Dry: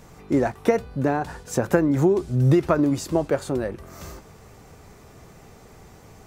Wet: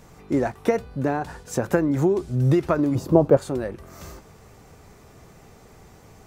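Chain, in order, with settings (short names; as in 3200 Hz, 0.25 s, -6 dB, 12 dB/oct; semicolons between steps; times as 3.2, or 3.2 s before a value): 2.95–3.37 graphic EQ 125/250/500/1000/2000/4000/8000 Hz +11/+5/+7/+5/-7/-4/-9 dB; gain -1.5 dB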